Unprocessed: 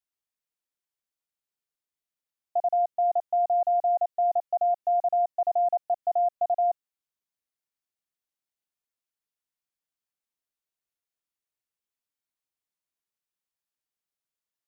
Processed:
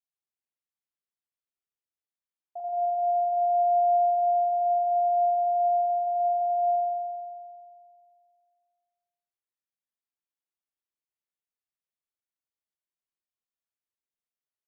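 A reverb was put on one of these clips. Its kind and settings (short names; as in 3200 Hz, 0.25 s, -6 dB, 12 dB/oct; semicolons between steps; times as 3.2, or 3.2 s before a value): spring tank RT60 2.2 s, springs 44 ms, chirp 45 ms, DRR -4 dB; gain -12.5 dB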